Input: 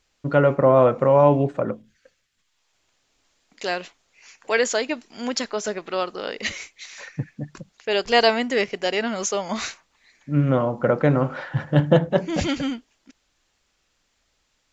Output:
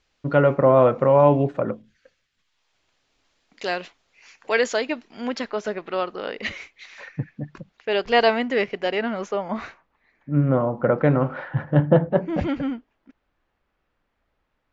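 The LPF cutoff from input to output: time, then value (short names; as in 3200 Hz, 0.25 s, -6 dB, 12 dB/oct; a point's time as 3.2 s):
4.6 s 5000 Hz
5.24 s 3000 Hz
8.81 s 3000 Hz
9.55 s 1500 Hz
10.64 s 1500 Hz
11.12 s 3000 Hz
11.88 s 1600 Hz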